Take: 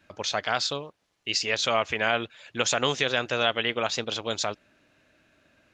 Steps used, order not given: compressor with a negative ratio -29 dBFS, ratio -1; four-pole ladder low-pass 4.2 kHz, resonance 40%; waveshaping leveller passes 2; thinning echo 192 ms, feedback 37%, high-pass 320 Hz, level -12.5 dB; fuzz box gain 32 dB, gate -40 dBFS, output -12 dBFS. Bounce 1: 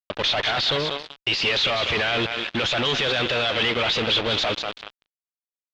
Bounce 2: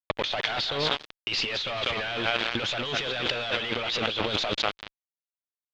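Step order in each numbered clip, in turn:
compressor with a negative ratio > thinning echo > waveshaping leveller > fuzz box > four-pole ladder low-pass; thinning echo > fuzz box > waveshaping leveller > four-pole ladder low-pass > compressor with a negative ratio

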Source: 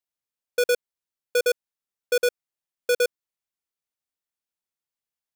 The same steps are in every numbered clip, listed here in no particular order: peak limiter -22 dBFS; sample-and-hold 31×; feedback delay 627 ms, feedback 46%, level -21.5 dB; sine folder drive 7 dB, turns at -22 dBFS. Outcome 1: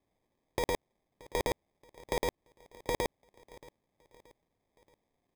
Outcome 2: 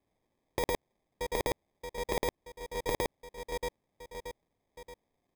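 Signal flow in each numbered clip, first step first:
peak limiter > sine folder > feedback delay > sample-and-hold; peak limiter > feedback delay > sample-and-hold > sine folder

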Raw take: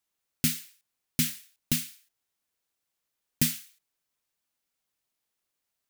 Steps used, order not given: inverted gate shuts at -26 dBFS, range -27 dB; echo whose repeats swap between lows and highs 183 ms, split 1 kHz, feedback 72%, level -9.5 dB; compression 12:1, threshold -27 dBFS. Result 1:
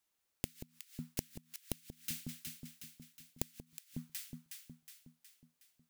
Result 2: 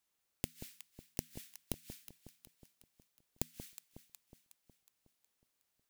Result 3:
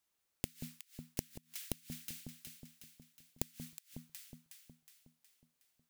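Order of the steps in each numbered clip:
echo whose repeats swap between lows and highs > compression > inverted gate; compression > inverted gate > echo whose repeats swap between lows and highs; compression > echo whose repeats swap between lows and highs > inverted gate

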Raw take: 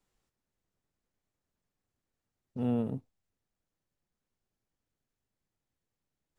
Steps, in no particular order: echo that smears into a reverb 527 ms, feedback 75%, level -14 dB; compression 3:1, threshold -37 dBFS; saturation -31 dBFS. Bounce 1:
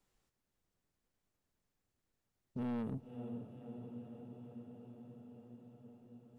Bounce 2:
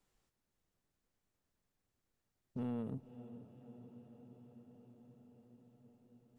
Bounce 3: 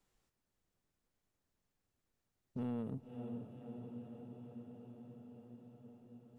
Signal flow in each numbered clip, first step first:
echo that smears into a reverb > saturation > compression; compression > echo that smears into a reverb > saturation; echo that smears into a reverb > compression > saturation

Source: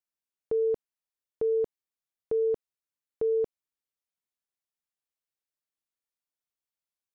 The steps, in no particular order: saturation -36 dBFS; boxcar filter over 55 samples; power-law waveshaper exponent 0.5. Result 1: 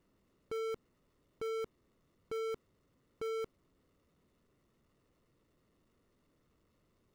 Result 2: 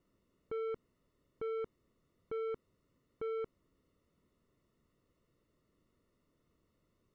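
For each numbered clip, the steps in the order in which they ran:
boxcar filter > saturation > power-law waveshaper; power-law waveshaper > boxcar filter > saturation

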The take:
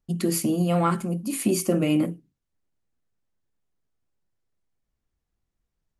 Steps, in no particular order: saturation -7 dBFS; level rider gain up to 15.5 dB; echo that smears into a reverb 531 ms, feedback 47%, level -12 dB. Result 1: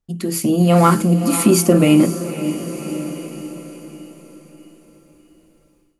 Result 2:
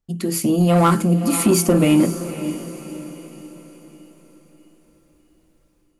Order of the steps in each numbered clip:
saturation > echo that smears into a reverb > level rider; level rider > saturation > echo that smears into a reverb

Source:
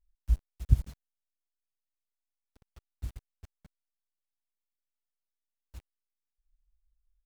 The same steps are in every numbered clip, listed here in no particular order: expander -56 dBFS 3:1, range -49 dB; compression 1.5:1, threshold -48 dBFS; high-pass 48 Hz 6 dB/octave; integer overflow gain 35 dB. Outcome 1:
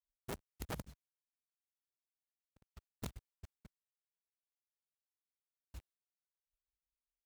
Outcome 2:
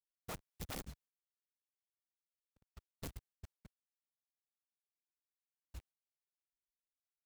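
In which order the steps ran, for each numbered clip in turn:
expander > compression > integer overflow > high-pass; high-pass > expander > integer overflow > compression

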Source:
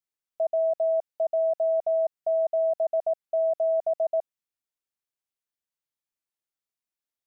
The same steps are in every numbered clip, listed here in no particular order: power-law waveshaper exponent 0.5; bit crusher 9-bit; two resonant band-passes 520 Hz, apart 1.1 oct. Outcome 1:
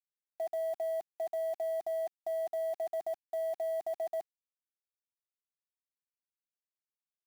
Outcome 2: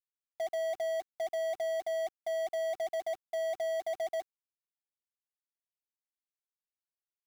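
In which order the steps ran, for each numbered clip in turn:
power-law waveshaper > two resonant band-passes > bit crusher; two resonant band-passes > power-law waveshaper > bit crusher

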